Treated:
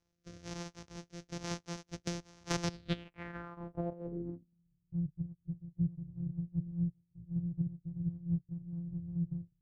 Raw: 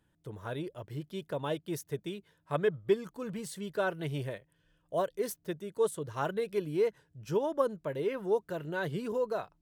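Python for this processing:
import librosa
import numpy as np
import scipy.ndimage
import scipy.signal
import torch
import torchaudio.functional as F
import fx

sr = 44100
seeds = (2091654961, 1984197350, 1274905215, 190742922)

y = np.r_[np.sort(x[:len(x) // 256 * 256].reshape(-1, 256), axis=1).ravel(), x[len(x) // 256 * 256:]]
y = fx.rotary_switch(y, sr, hz=1.1, then_hz=5.0, switch_at_s=3.6)
y = fx.filter_sweep_lowpass(y, sr, from_hz=6000.0, to_hz=140.0, start_s=2.63, end_s=4.73, q=3.7)
y = fx.band_squash(y, sr, depth_pct=100, at=(2.07, 2.88))
y = y * 10.0 ** (-6.0 / 20.0)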